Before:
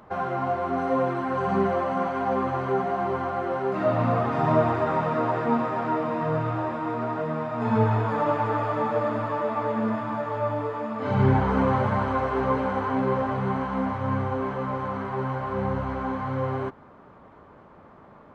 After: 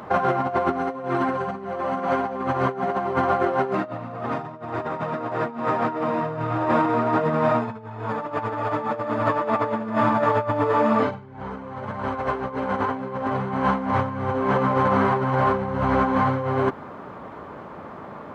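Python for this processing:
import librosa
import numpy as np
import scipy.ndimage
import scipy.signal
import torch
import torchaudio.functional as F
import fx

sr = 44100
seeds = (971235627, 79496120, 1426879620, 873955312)

y = fx.over_compress(x, sr, threshold_db=-30.0, ratio=-0.5)
y = fx.highpass(y, sr, hz=120.0, slope=6)
y = y * 10.0 ** (7.5 / 20.0)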